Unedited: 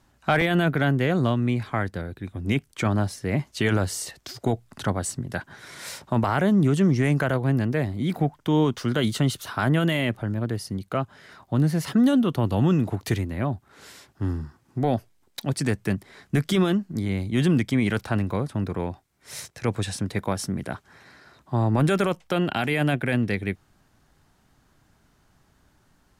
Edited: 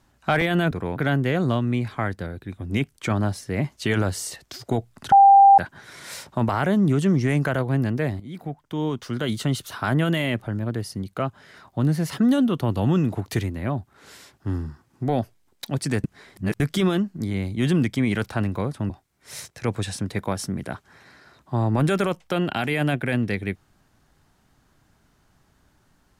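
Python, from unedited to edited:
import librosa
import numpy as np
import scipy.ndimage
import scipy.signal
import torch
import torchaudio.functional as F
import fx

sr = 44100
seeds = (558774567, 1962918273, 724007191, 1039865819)

y = fx.edit(x, sr, fx.bleep(start_s=4.87, length_s=0.46, hz=792.0, db=-8.0),
    fx.fade_in_from(start_s=7.95, length_s=1.57, floor_db=-13.0),
    fx.reverse_span(start_s=15.79, length_s=0.56),
    fx.move(start_s=18.65, length_s=0.25, to_s=0.71), tone=tone)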